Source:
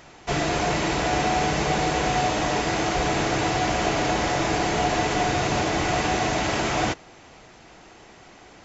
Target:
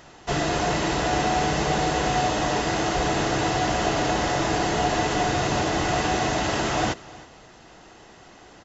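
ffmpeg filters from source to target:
ffmpeg -i in.wav -filter_complex "[0:a]bandreject=frequency=2300:width=8.4,asplit=2[link_01][link_02];[link_02]aecho=0:1:314:0.0944[link_03];[link_01][link_03]amix=inputs=2:normalize=0" out.wav

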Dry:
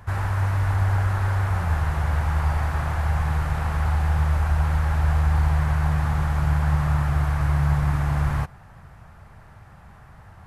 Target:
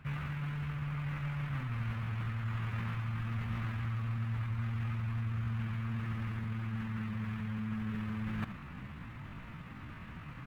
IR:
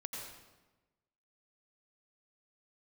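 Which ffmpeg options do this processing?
-af "asetrate=66075,aresample=44100,atempo=0.66742,bass=frequency=250:gain=0,treble=frequency=4000:gain=-8,areverse,acompressor=threshold=-34dB:ratio=12,areverse,aecho=1:1:78:0.224"

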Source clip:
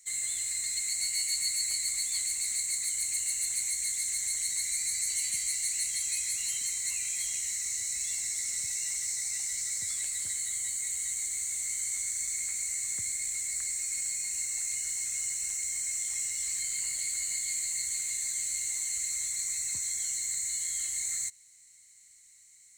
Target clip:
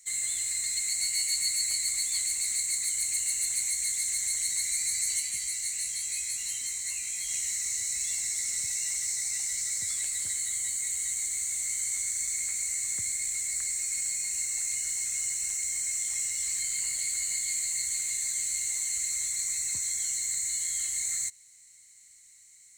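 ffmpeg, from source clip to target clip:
ffmpeg -i in.wav -filter_complex "[0:a]asplit=3[link_01][link_02][link_03];[link_01]afade=type=out:start_time=5.19:duration=0.02[link_04];[link_02]flanger=delay=17.5:depth=2.4:speed=1.1,afade=type=in:start_time=5.19:duration=0.02,afade=type=out:start_time=7.28:duration=0.02[link_05];[link_03]afade=type=in:start_time=7.28:duration=0.02[link_06];[link_04][link_05][link_06]amix=inputs=3:normalize=0,volume=2dB" out.wav

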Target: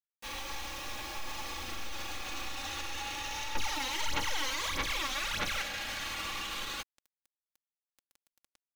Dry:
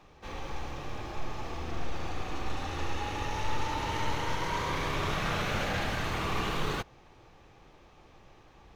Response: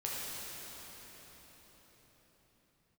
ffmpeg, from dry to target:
-filter_complex "[0:a]tiltshelf=frequency=1400:gain=-9.5,acrusher=bits=7:mix=0:aa=0.000001,aecho=1:1:3.6:0.56,alimiter=level_in=4.5dB:limit=-24dB:level=0:latency=1:release=73,volume=-4.5dB,asettb=1/sr,asplit=3[link_01][link_02][link_03];[link_01]atrim=end=3.554[link_04];[link_02]atrim=start=3.55:end=5.62,asetpts=PTS-STARTPTS,afade=type=in:duration=0.004:curve=qsin,afade=type=out:start_time=2.066:duration=0.004:curve=qsin,aphaser=in_gain=1:out_gain=1:delay=3.9:decay=0.74:speed=1.6:type=sinusoidal[link_05];[link_03]atrim=start=5.616[link_06];[link_04][link_05]acrossfade=duration=0.004:curve1=hsin:curve2=qsin[link_07];[link_07][link_06]acrossfade=duration=0.004:curve1=qsin:curve2=hsin"

